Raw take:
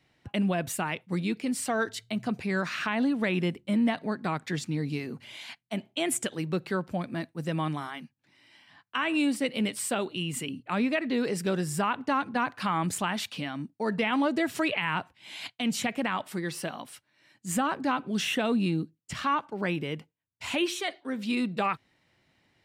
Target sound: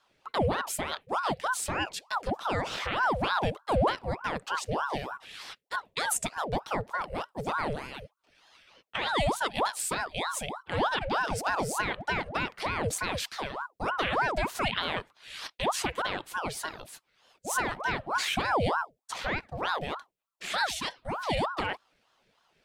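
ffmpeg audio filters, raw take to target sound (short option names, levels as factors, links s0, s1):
-af "equalizer=f=820:t=o:w=1.5:g=-8.5,aeval=exprs='val(0)*sin(2*PI*780*n/s+780*0.65/3.3*sin(2*PI*3.3*n/s))':c=same,volume=1.5"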